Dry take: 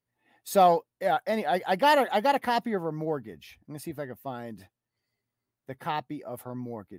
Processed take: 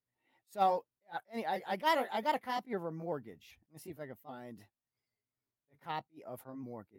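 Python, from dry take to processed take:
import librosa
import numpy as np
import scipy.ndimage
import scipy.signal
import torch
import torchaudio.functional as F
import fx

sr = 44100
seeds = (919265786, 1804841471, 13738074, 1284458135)

y = fx.pitch_ramps(x, sr, semitones=1.5, every_ms=390)
y = fx.attack_slew(y, sr, db_per_s=350.0)
y = y * librosa.db_to_amplitude(-7.5)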